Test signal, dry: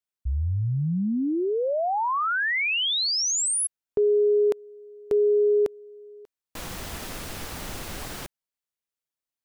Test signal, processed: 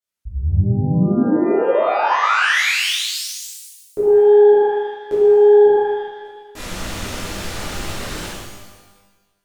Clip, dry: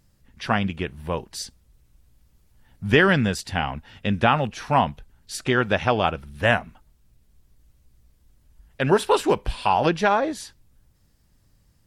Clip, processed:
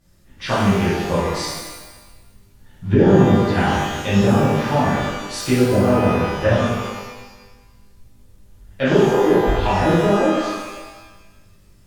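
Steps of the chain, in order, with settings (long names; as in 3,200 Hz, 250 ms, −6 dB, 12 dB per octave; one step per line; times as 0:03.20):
treble cut that deepens with the level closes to 450 Hz, closed at −17 dBFS
reverb with rising layers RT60 1.2 s, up +12 semitones, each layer −8 dB, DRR −11.5 dB
level −3.5 dB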